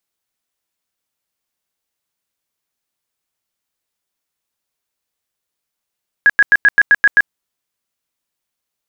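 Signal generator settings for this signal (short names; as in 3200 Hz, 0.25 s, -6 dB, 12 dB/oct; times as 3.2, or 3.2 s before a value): tone bursts 1660 Hz, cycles 60, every 0.13 s, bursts 8, -5 dBFS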